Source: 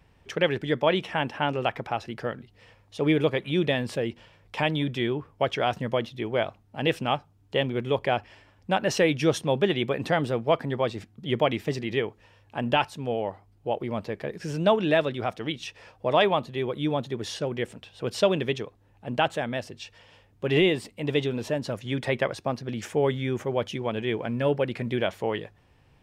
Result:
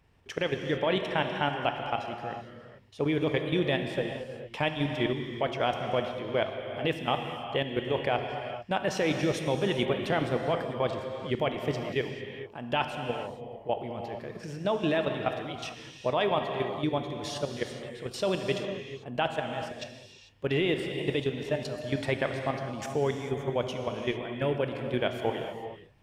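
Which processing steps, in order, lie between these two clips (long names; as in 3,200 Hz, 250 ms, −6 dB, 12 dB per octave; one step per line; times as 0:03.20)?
output level in coarse steps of 13 dB
reverb whose tail is shaped and stops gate 470 ms flat, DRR 4 dB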